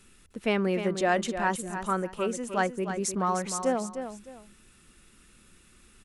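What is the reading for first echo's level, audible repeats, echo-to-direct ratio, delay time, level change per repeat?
−9.0 dB, 2, −8.5 dB, 305 ms, −11.5 dB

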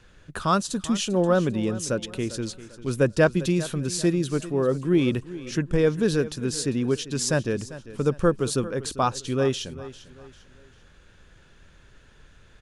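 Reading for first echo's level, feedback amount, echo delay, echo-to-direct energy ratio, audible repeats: −16.0 dB, 36%, 396 ms, −15.5 dB, 3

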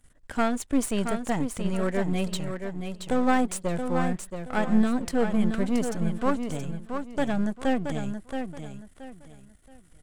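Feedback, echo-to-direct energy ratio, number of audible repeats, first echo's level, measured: 28%, −6.5 dB, 3, −7.0 dB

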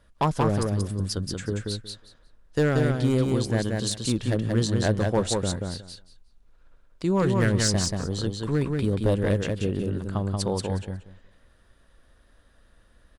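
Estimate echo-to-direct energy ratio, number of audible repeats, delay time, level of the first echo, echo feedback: −3.5 dB, 3, 182 ms, −3.5 dB, 17%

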